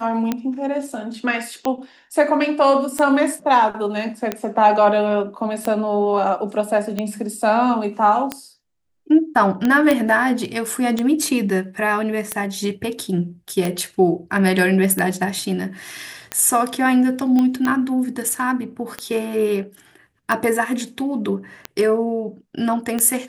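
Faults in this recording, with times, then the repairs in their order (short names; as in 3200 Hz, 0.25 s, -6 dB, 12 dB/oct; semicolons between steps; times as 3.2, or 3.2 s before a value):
tick 45 rpm -8 dBFS
9.91 pop -5 dBFS
17.39 pop -10 dBFS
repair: de-click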